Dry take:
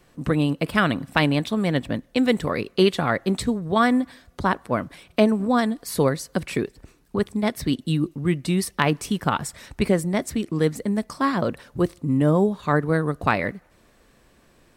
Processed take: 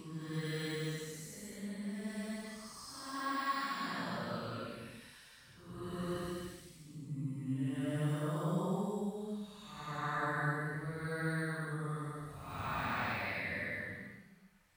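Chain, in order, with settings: de-esser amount 75%; amplifier tone stack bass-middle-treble 5-5-5; Paulstretch 4.6×, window 0.25 s, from 10.49 s

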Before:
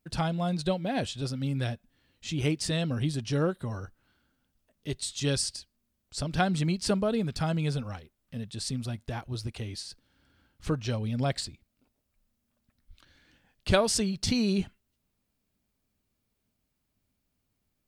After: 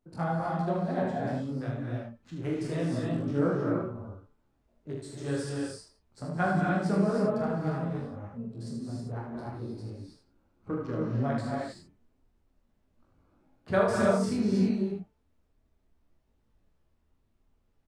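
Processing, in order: local Wiener filter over 25 samples; high-pass 110 Hz 24 dB/octave; resonant high shelf 2.2 kHz -12 dB, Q 1.5; de-hum 147.1 Hz, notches 22; added noise brown -70 dBFS; peaking EQ 140 Hz -2 dB; early reflections 42 ms -5 dB, 77 ms -4.5 dB; gated-style reverb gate 340 ms rising, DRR -0.5 dB; detune thickener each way 21 cents

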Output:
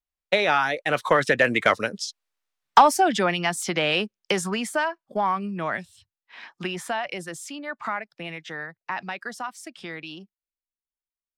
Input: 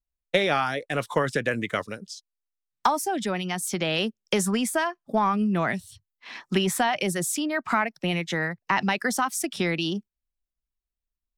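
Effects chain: Doppler pass-by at 2.29 s, 17 m/s, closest 11 m; overdrive pedal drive 11 dB, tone 2.9 kHz, clips at -11 dBFS; trim +8.5 dB

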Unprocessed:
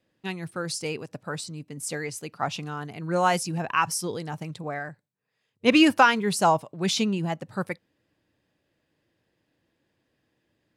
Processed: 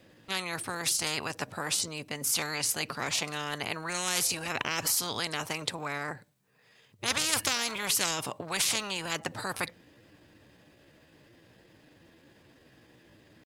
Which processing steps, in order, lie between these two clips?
tempo 0.8×; spectrum-flattening compressor 10:1

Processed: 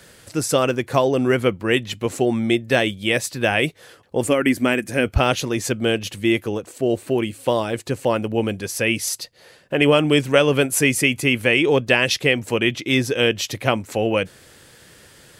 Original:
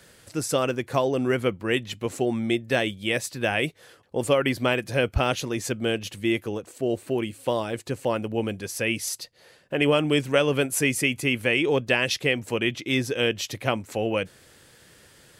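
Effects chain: 4.26–5.06 s: ten-band graphic EQ 125 Hz -8 dB, 250 Hz +6 dB, 500 Hz -4 dB, 1 kHz -5 dB, 2 kHz +3 dB, 4 kHz -10 dB, 8 kHz +5 dB; trim +5.5 dB

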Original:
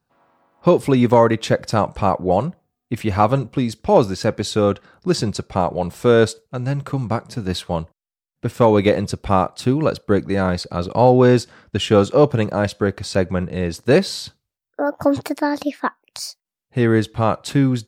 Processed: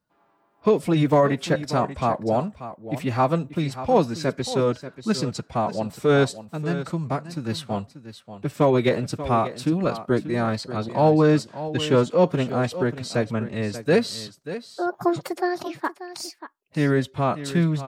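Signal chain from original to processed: formant-preserving pitch shift +3.5 st; delay 586 ms -13 dB; trim -4.5 dB

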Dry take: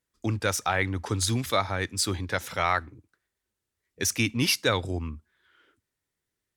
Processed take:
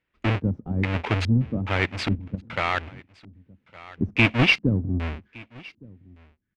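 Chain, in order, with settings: square wave that keeps the level; LFO low-pass square 1.2 Hz 220–2500 Hz; delay 1164 ms -24 dB; 2.15–2.81 s: level held to a coarse grid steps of 12 dB

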